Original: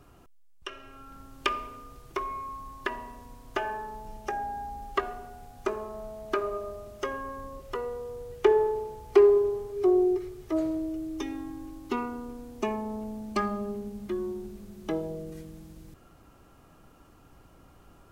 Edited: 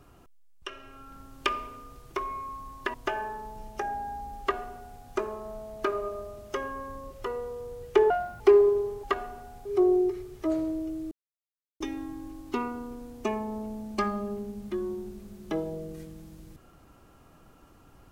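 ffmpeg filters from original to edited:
-filter_complex "[0:a]asplit=7[a][b][c][d][e][f][g];[a]atrim=end=2.942[h];[b]atrim=start=3.428:end=8.594[i];[c]atrim=start=8.59:end=9.09,asetpts=PTS-STARTPTS,asetrate=72765,aresample=44100[j];[d]atrim=start=9.086:end=9.722[k];[e]atrim=start=4.898:end=5.522[l];[f]atrim=start=9.718:end=11.18,asetpts=PTS-STARTPTS,afade=t=out:st=1.458:d=0.004:c=hsin,apad=pad_dur=0.69[m];[g]atrim=start=11.18,asetpts=PTS-STARTPTS,afade=t=in:d=0.004:c=hsin[n];[h][i]acrossfade=d=0.004:c1=hsin:c2=hsin[o];[o][j]acrossfade=d=0.004:c1=hsin:c2=hsin[p];[p][k]acrossfade=d=0.004:c1=hsin:c2=hsin[q];[q][l]acrossfade=d=0.004:c1=hsin:c2=hsin[r];[m][n]concat=n=2:v=0:a=1[s];[r][s]acrossfade=d=0.004:c1=hsin:c2=hsin"

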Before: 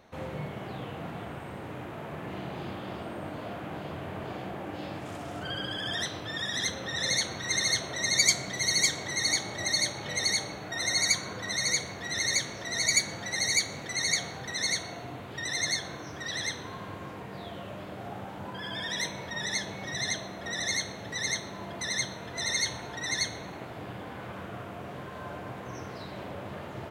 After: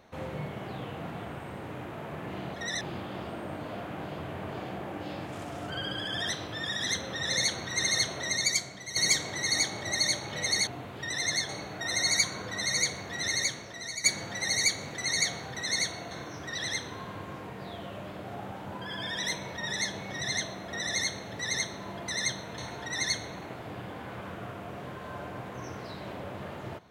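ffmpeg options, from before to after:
-filter_complex "[0:a]asplit=9[a][b][c][d][e][f][g][h][i];[a]atrim=end=2.542[j];[b]atrim=start=20.388:end=20.662[k];[c]atrim=start=2.538:end=8.69,asetpts=PTS-STARTPTS,afade=t=out:st=5.442:d=0.71:c=qua:silence=0.316228[l];[d]atrim=start=8.69:end=10.402,asetpts=PTS-STARTPTS,afade=t=in:d=0.004:c=hsin:silence=0.316228[m];[e]atrim=start=15.018:end=15.842[n];[f]atrim=start=10.398:end=12.95,asetpts=PTS-STARTPTS,afade=t=out:st=1.772:d=0.78:silence=0.223872[o];[g]atrim=start=12.95:end=15.022,asetpts=PTS-STARTPTS,afade=t=in:d=0.004:c=hsin:silence=0.223872[p];[h]atrim=start=15.838:end=22.312[q];[i]atrim=start=22.688[r];[j][k]acrossfade=d=0.004:c1=hsin:c2=hsin[s];[l][m]concat=n=2:v=0:a=1[t];[s][t]acrossfade=d=0.004:c1=hsin:c2=hsin[u];[u][n]acrossfade=d=0.004:c1=hsin:c2=hsin[v];[o][p]concat=n=2:v=0:a=1[w];[v][w]acrossfade=d=0.004:c1=hsin:c2=hsin[x];[x][q]acrossfade=d=0.004:c1=hsin:c2=hsin[y];[y][r]acrossfade=d=0.004:c1=hsin:c2=hsin"

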